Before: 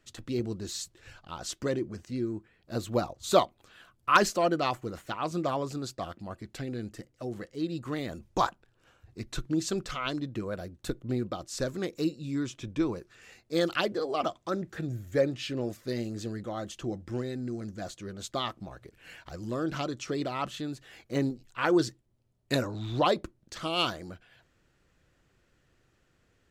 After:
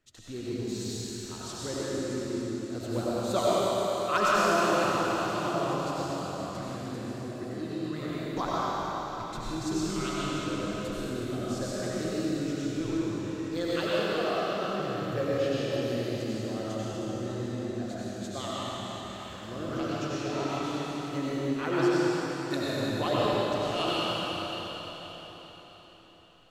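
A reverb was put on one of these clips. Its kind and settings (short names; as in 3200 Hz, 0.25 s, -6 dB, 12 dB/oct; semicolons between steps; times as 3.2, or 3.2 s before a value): digital reverb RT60 4.7 s, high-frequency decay 1×, pre-delay 55 ms, DRR -9 dB; gain -8 dB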